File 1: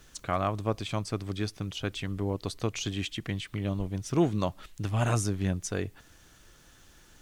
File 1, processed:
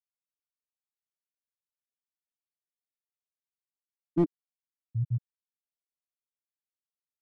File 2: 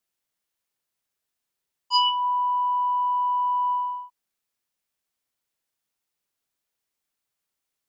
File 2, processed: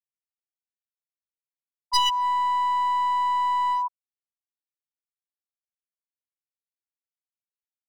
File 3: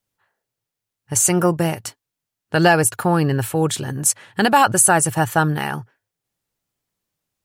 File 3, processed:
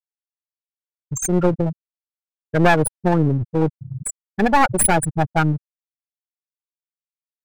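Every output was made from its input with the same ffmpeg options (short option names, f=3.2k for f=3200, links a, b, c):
-af "afftfilt=real='re*gte(hypot(re,im),0.562)':imag='im*gte(hypot(re,im),0.562)':win_size=1024:overlap=0.75,aeval=exprs='clip(val(0),-1,0.0531)':c=same,volume=3dB"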